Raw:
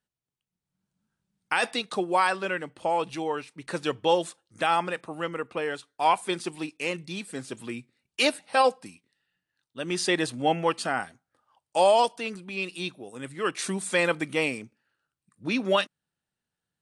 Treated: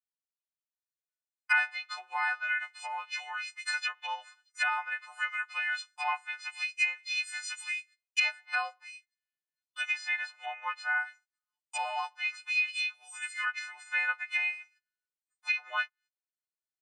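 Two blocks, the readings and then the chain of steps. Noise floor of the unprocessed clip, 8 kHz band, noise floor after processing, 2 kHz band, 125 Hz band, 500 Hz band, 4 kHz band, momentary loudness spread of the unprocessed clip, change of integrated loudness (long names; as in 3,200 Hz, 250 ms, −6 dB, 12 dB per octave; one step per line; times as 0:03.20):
below −85 dBFS, −7.0 dB, below −85 dBFS, +2.5 dB, below −40 dB, −27.0 dB, −6.5 dB, 14 LU, −5.0 dB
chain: every partial snapped to a pitch grid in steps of 3 semitones
noise gate −52 dBFS, range −25 dB
treble cut that deepens with the level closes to 1,300 Hz, closed at −22 dBFS
elliptic high-pass filter 1,000 Hz, stop band 70 dB
high-shelf EQ 8,700 Hz −4 dB
comb filter 5.3 ms, depth 81%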